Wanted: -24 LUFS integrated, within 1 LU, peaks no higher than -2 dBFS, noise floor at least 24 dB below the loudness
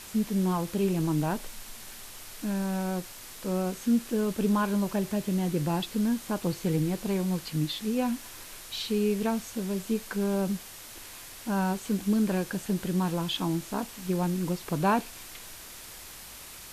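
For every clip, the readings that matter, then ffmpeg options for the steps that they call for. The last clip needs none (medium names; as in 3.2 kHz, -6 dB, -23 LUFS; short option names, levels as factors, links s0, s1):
noise floor -45 dBFS; noise floor target -54 dBFS; loudness -29.5 LUFS; peak level -15.0 dBFS; loudness target -24.0 LUFS
-> -af "afftdn=nr=9:nf=-45"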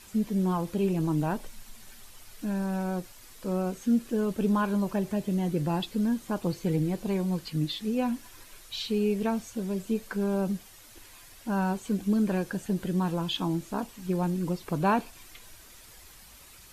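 noise floor -52 dBFS; noise floor target -54 dBFS
-> -af "afftdn=nr=6:nf=-52"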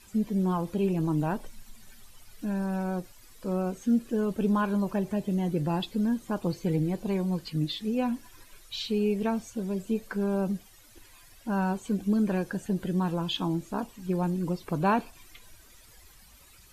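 noise floor -55 dBFS; loudness -29.5 LUFS; peak level -15.5 dBFS; loudness target -24.0 LUFS
-> -af "volume=1.88"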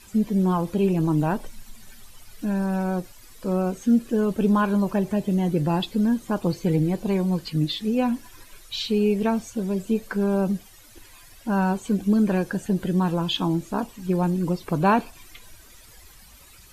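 loudness -24.0 LUFS; peak level -10.0 dBFS; noise floor -49 dBFS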